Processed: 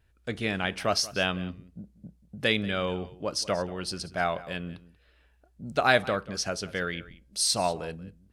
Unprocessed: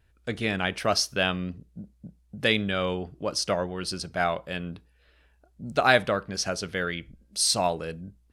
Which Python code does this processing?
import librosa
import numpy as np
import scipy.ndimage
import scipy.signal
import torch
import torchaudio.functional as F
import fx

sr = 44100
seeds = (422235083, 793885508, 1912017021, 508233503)

y = x + 10.0 ** (-18.5 / 20.0) * np.pad(x, (int(185 * sr / 1000.0), 0))[:len(x)]
y = F.gain(torch.from_numpy(y), -2.0).numpy()